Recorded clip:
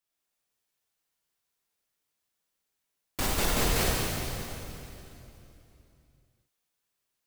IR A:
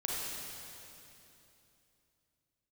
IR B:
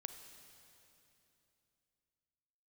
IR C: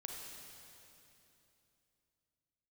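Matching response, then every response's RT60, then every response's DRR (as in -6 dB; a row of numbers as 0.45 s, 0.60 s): A; 3.0 s, 3.0 s, 3.0 s; -4.5 dB, 7.5 dB, -0.5 dB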